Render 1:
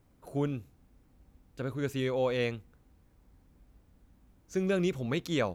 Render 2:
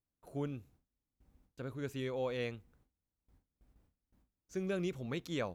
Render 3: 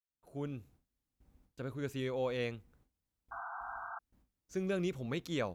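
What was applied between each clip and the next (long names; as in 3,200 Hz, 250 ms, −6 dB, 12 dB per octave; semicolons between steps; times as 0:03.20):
noise gate with hold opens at −51 dBFS; level −7.5 dB
fade in at the beginning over 0.62 s; sound drawn into the spectrogram noise, 0:03.31–0:03.99, 670–1,600 Hz −45 dBFS; level +1.5 dB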